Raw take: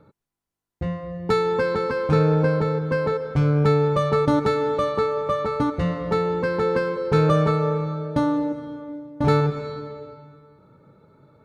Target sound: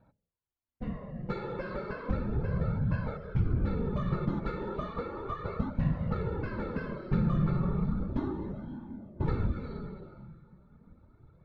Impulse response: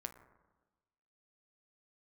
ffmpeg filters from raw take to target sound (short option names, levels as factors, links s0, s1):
-af "lowpass=3500,bandreject=f=65.12:t=h:w=4,bandreject=f=130.24:t=h:w=4,bandreject=f=195.36:t=h:w=4,bandreject=f=260.48:t=h:w=4,bandreject=f=325.6:t=h:w=4,bandreject=f=390.72:t=h:w=4,bandreject=f=455.84:t=h:w=4,bandreject=f=520.96:t=h:w=4,bandreject=f=586.08:t=h:w=4,bandreject=f=651.2:t=h:w=4,bandreject=f=716.32:t=h:w=4,bandreject=f=781.44:t=h:w=4,bandreject=f=846.56:t=h:w=4,afftfilt=real='hypot(re,im)*cos(2*PI*random(0))':imag='hypot(re,im)*sin(2*PI*random(1))':win_size=512:overlap=0.75,acompressor=threshold=0.0447:ratio=6,flanger=delay=1.2:depth=4.6:regen=-21:speed=0.34:shape=sinusoidal,asubboost=boost=4.5:cutoff=210,volume=0.891"